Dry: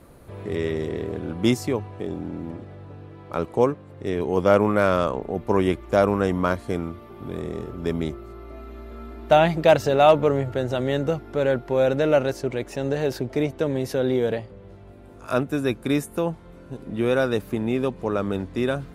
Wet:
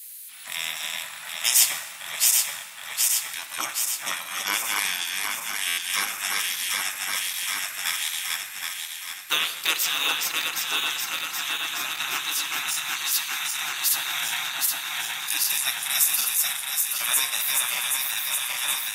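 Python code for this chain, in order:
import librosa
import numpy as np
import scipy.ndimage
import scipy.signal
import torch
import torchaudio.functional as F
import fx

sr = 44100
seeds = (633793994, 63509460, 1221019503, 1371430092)

y = fx.reverse_delay_fb(x, sr, ms=386, feedback_pct=81, wet_db=-2)
y = scipy.signal.sosfilt(scipy.signal.butter(2, 400.0, 'highpass', fs=sr, output='sos'), y)
y = fx.spec_gate(y, sr, threshold_db=-20, keep='weak')
y = fx.high_shelf(y, sr, hz=7600.0, db=7.5)
y = fx.rider(y, sr, range_db=4, speed_s=2.0)
y = fx.tilt_eq(y, sr, slope=4.5)
y = fx.rev_plate(y, sr, seeds[0], rt60_s=1.6, hf_ratio=0.6, predelay_ms=0, drr_db=8.5)
y = fx.buffer_glitch(y, sr, at_s=(5.67,), block=512, repeats=8)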